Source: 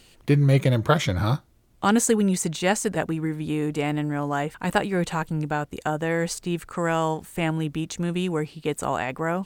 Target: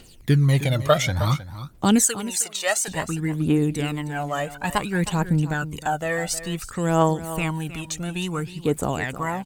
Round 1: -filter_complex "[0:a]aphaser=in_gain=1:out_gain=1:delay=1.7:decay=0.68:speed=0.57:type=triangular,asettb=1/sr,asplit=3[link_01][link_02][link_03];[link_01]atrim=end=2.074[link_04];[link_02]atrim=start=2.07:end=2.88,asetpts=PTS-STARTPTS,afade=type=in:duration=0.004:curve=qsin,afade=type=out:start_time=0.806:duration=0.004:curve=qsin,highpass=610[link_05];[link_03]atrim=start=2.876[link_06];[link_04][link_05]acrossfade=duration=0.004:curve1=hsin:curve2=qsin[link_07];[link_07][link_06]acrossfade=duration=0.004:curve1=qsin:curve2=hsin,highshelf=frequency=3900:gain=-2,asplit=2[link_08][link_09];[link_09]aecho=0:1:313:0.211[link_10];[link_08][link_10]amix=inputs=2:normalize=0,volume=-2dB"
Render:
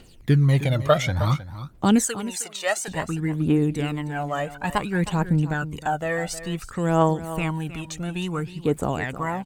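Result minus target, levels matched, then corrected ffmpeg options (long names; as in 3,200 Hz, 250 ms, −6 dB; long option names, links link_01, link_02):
8,000 Hz band −5.5 dB
-filter_complex "[0:a]aphaser=in_gain=1:out_gain=1:delay=1.7:decay=0.68:speed=0.57:type=triangular,asettb=1/sr,asplit=3[link_01][link_02][link_03];[link_01]atrim=end=2.074[link_04];[link_02]atrim=start=2.07:end=2.88,asetpts=PTS-STARTPTS,afade=type=in:duration=0.004:curve=qsin,afade=type=out:start_time=0.806:duration=0.004:curve=qsin,highpass=610[link_05];[link_03]atrim=start=2.876[link_06];[link_04][link_05]acrossfade=duration=0.004:curve1=hsin:curve2=qsin[link_07];[link_07][link_06]acrossfade=duration=0.004:curve1=qsin:curve2=hsin,highshelf=frequency=3900:gain=6,asplit=2[link_08][link_09];[link_09]aecho=0:1:313:0.211[link_10];[link_08][link_10]amix=inputs=2:normalize=0,volume=-2dB"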